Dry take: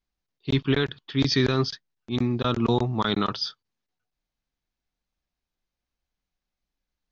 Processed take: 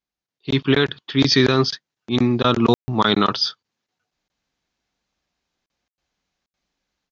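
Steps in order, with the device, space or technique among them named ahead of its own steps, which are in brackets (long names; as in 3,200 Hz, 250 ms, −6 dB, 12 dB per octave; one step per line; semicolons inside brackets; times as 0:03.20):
call with lost packets (high-pass filter 170 Hz 6 dB per octave; downsampling to 16,000 Hz; automatic gain control gain up to 13 dB; dropped packets bursts)
level −1.5 dB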